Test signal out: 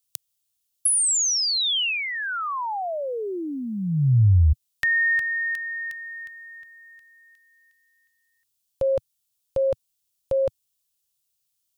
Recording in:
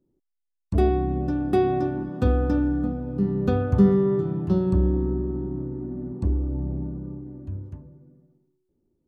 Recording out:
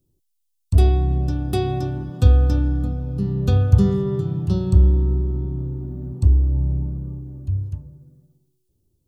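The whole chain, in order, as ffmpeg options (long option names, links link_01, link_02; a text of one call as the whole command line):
ffmpeg -i in.wav -filter_complex "[0:a]lowshelf=frequency=160:width_type=q:width=1.5:gain=10,acrossover=split=2200[link_01][link_02];[link_02]acompressor=threshold=-36dB:ratio=4[link_03];[link_01][link_03]amix=inputs=2:normalize=0,aexciter=amount=5.5:drive=2.5:freq=2800,volume=-2dB" out.wav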